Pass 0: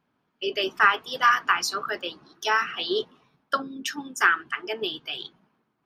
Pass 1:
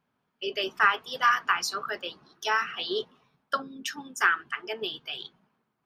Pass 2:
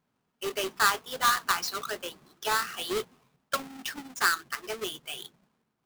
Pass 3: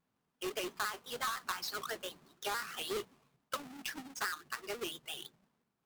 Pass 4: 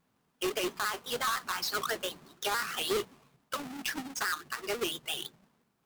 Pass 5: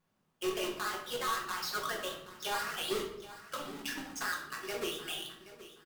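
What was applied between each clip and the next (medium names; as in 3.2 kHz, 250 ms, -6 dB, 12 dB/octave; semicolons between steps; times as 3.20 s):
peaking EQ 310 Hz -7 dB 0.32 oct; trim -3 dB
square wave that keeps the level; trim -5 dB
compression 6:1, threshold -29 dBFS, peak gain reduction 10.5 dB; vibrato with a chosen wave square 5.9 Hz, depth 100 cents; trim -5 dB
peak limiter -31 dBFS, peak gain reduction 7.5 dB; trim +8 dB
feedback delay 775 ms, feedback 22%, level -15.5 dB; reverberation RT60 0.65 s, pre-delay 6 ms, DRR 0 dB; trim -6.5 dB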